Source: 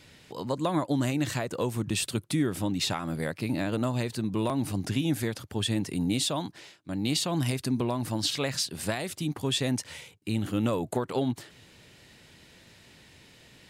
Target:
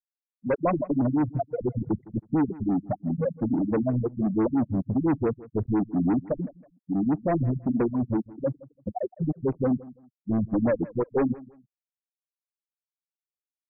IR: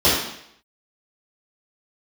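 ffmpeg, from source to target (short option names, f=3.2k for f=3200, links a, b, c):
-filter_complex "[0:a]asplit=2[a][b];[1:a]atrim=start_sample=2205,adelay=12[c];[b][c]afir=irnorm=-1:irlink=0,volume=-44.5dB[d];[a][d]amix=inputs=2:normalize=0,acrusher=bits=7:dc=4:mix=0:aa=0.000001,afftfilt=real='re*gte(hypot(re,im),0.178)':imag='im*gte(hypot(re,im),0.178)':win_size=1024:overlap=0.75,asplit=2[e][f];[f]highpass=f=720:p=1,volume=28dB,asoftclip=type=tanh:threshold=-15dB[g];[e][g]amix=inputs=2:normalize=0,lowpass=f=2.8k:p=1,volume=-6dB,aecho=1:1:160|320:0.1|0.026,afftfilt=real='re*lt(b*sr/1024,210*pow(2700/210,0.5+0.5*sin(2*PI*5.9*pts/sr)))':imag='im*lt(b*sr/1024,210*pow(2700/210,0.5+0.5*sin(2*PI*5.9*pts/sr)))':win_size=1024:overlap=0.75"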